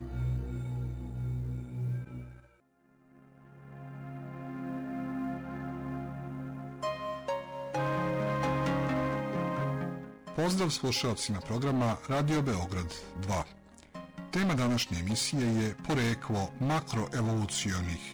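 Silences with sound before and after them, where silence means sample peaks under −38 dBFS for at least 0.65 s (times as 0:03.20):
0:02.24–0:03.73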